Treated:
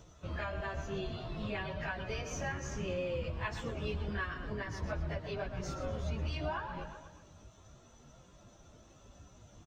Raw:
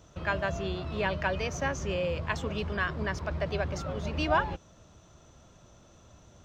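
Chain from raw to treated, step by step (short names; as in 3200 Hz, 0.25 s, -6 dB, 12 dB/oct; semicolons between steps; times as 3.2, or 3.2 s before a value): octaver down 1 oct, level -4 dB; on a send: feedback echo 81 ms, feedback 47%, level -12 dB; on the sum: compressor 8:1, threshold -31 dBFS, peak gain reduction 11.5 dB; plain phase-vocoder stretch 1.5×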